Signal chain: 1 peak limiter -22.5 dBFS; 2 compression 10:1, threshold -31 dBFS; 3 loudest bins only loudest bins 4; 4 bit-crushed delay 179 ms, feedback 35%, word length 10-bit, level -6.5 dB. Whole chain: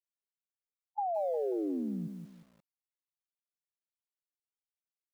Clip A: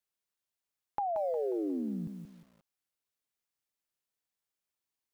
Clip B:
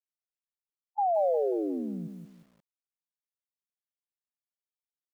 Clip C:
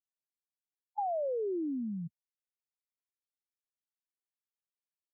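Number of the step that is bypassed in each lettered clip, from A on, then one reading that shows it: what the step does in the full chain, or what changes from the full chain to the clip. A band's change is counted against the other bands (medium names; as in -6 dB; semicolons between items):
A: 3, crest factor change +2.5 dB; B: 2, mean gain reduction 3.5 dB; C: 4, momentary loudness spread change -3 LU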